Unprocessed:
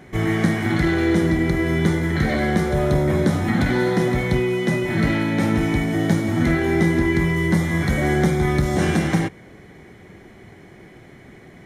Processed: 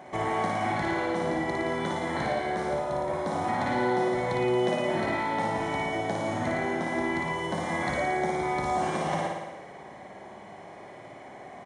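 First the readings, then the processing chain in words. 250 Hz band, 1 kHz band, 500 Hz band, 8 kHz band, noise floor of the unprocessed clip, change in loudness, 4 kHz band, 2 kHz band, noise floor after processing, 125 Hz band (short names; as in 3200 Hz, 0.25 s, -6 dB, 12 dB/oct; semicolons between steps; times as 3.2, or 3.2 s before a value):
-12.5 dB, +1.5 dB, -5.5 dB, -8.5 dB, -45 dBFS, -8.5 dB, -6.5 dB, -7.5 dB, -46 dBFS, -16.5 dB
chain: HPF 290 Hz 6 dB/oct; band shelf 780 Hz +11.5 dB 1.2 oct; compressor, threshold -23 dBFS, peak gain reduction 10.5 dB; flutter echo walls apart 9.7 m, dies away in 1.1 s; downsampling 22050 Hz; gain -4.5 dB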